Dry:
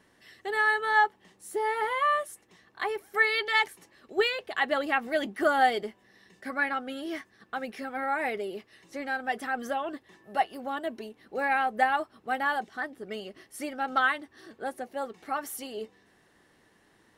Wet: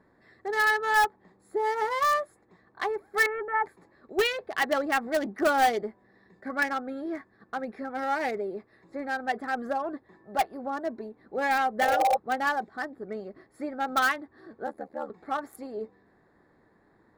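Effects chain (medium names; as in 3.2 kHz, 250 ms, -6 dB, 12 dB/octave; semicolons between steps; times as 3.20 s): local Wiener filter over 15 samples; 3.26–3.66 s: steep low-pass 1.6 kHz 36 dB/octave; 11.85–12.14 s: spectral replace 350–1200 Hz before; in parallel at -10.5 dB: integer overflow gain 18.5 dB; 14.66–15.10 s: on the sum: ring modulator 38 Hz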